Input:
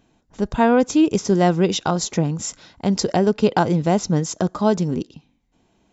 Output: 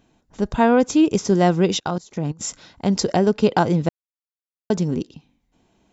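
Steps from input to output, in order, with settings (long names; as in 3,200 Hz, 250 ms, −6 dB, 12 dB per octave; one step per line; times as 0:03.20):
0:01.79–0:02.41: output level in coarse steps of 23 dB
0:03.89–0:04.70: silence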